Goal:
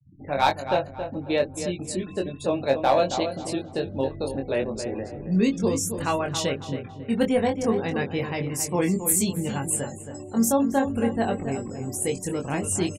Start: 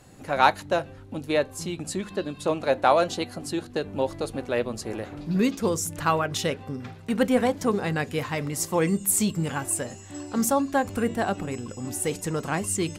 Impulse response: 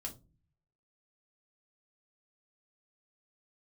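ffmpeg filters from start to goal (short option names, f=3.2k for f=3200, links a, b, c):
-filter_complex "[0:a]afftfilt=real='re*gte(hypot(re,im),0.0141)':imag='im*gte(hypot(re,im),0.0141)':win_size=1024:overlap=0.75,equalizer=f=1.3k:w=1.6:g=-8,aeval=exprs='clip(val(0),-1,0.2)':c=same,asplit=2[a][b];[b]adelay=22,volume=-4dB[c];[a][c]amix=inputs=2:normalize=0,asplit=2[d][e];[e]adelay=273,lowpass=f=2.4k:p=1,volume=-8.5dB,asplit=2[f][g];[g]adelay=273,lowpass=f=2.4k:p=1,volume=0.33,asplit=2[h][i];[i]adelay=273,lowpass=f=2.4k:p=1,volume=0.33,asplit=2[j][k];[k]adelay=273,lowpass=f=2.4k:p=1,volume=0.33[l];[f][h][j][l]amix=inputs=4:normalize=0[m];[d][m]amix=inputs=2:normalize=0"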